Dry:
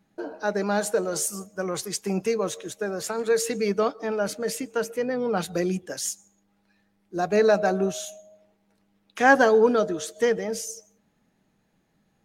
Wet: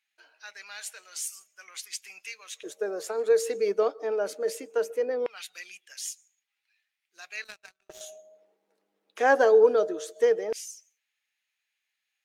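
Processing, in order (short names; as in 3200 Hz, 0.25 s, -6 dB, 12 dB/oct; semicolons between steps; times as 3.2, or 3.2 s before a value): LFO high-pass square 0.19 Hz 430–2400 Hz; 7.44–8.01 power-law curve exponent 2; gain -7 dB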